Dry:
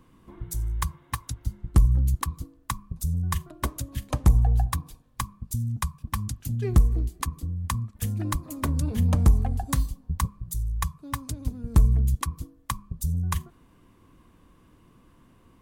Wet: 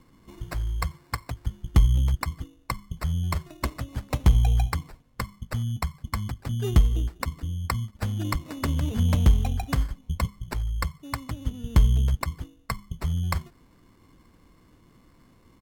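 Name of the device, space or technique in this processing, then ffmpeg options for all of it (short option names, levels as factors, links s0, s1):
crushed at another speed: -af "asetrate=55125,aresample=44100,acrusher=samples=11:mix=1:aa=0.000001,asetrate=35280,aresample=44100"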